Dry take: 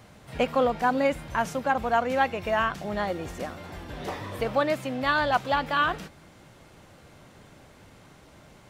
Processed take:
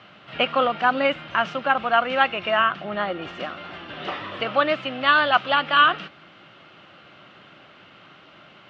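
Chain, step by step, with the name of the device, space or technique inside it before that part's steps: 2.57–3.22 s: treble shelf 4 kHz -11 dB; kitchen radio (cabinet simulation 210–4100 Hz, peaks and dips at 250 Hz -5 dB, 460 Hz -7 dB, 910 Hz -5 dB, 1.3 kHz +8 dB, 2.9 kHz +10 dB); trim +4.5 dB

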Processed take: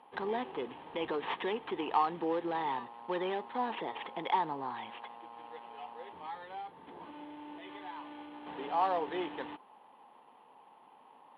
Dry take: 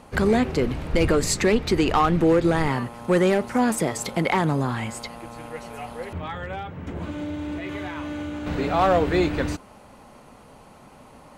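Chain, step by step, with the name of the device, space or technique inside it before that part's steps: toy sound module (decimation joined by straight lines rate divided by 8×; class-D stage that switches slowly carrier 11 kHz; cabinet simulation 510–3600 Hz, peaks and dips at 600 Hz -10 dB, 890 Hz +8 dB, 1.4 kHz -10 dB, 2.2 kHz -5 dB, 3.2 kHz +5 dB); trim -7.5 dB

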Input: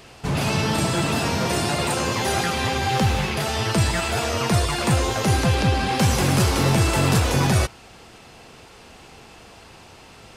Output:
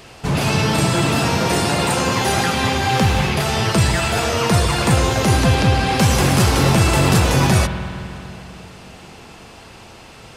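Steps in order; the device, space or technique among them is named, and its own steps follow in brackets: dub delay into a spring reverb (filtered feedback delay 272 ms, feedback 71%, level -22.5 dB; spring tank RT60 2.9 s, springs 49 ms, chirp 75 ms, DRR 7.5 dB); trim +4 dB

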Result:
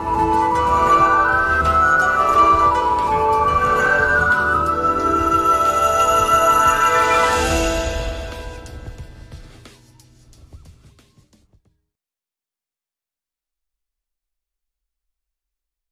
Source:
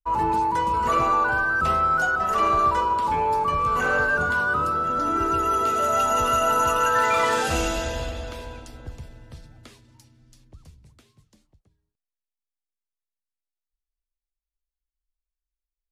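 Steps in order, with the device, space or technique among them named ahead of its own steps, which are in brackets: reverse reverb (reverse; reverberation RT60 1.4 s, pre-delay 98 ms, DRR 2.5 dB; reverse); trim +4 dB

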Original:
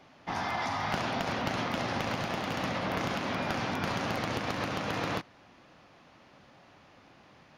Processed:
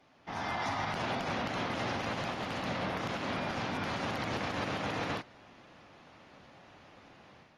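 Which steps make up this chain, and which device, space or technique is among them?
low-bitrate web radio (level rider gain up to 8 dB; peak limiter -18 dBFS, peak gain reduction 8.5 dB; trim -8 dB; AAC 32 kbps 48 kHz)

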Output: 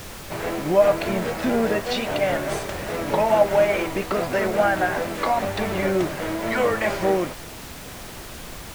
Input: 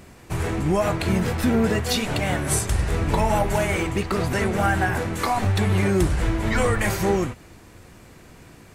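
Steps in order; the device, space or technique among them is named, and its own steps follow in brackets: horn gramophone (band-pass 230–3800 Hz; peaking EQ 600 Hz +10 dB 0.29 oct; wow and flutter; pink noise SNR 14 dB)

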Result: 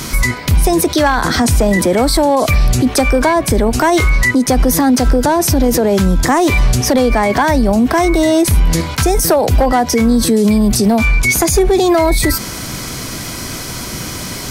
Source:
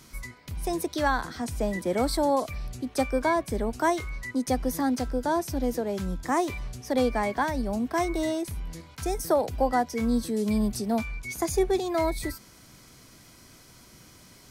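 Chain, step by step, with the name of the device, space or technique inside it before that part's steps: loud club master (compression 2.5:1, threshold -28 dBFS, peak gain reduction 7 dB; hard clipper -22.5 dBFS, distortion -24 dB; loudness maximiser +32 dB); trim -4 dB

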